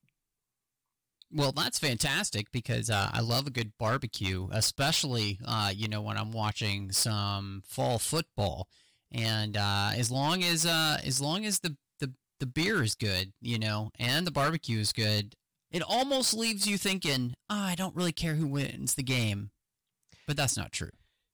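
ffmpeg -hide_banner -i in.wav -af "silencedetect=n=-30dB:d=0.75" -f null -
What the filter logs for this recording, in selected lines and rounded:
silence_start: 0.00
silence_end: 1.36 | silence_duration: 1.36
silence_start: 19.38
silence_end: 20.29 | silence_duration: 0.90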